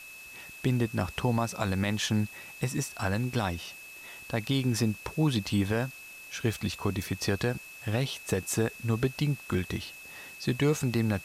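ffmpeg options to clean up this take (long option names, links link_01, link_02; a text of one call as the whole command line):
ffmpeg -i in.wav -af "bandreject=frequency=2600:width=30,afwtdn=0.0028" out.wav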